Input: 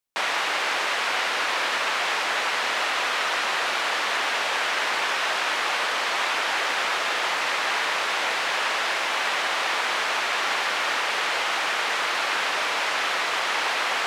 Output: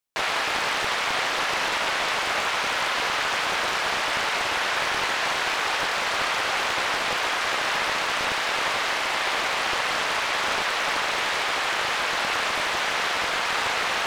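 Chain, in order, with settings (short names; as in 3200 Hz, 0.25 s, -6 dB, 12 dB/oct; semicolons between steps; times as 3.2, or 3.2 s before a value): Doppler distortion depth 0.5 ms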